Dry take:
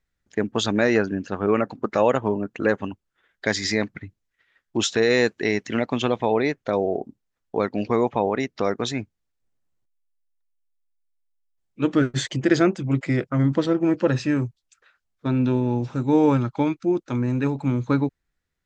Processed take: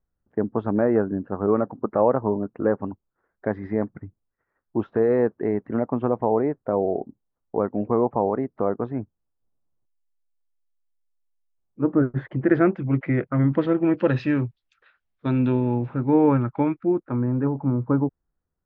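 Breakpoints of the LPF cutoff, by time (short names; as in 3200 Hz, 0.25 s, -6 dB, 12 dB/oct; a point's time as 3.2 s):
LPF 24 dB/oct
11.98 s 1200 Hz
12.77 s 2200 Hz
13.34 s 2200 Hz
14.25 s 3700 Hz
15.3 s 3700 Hz
16.03 s 2100 Hz
16.67 s 2100 Hz
17.57 s 1200 Hz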